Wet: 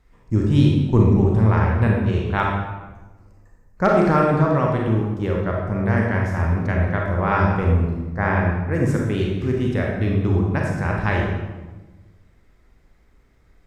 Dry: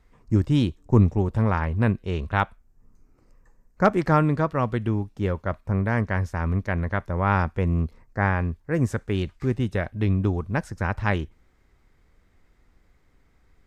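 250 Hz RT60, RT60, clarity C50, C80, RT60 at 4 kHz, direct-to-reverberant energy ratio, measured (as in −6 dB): 1.5 s, 1.2 s, 0.5 dB, 3.5 dB, 0.85 s, −1.5 dB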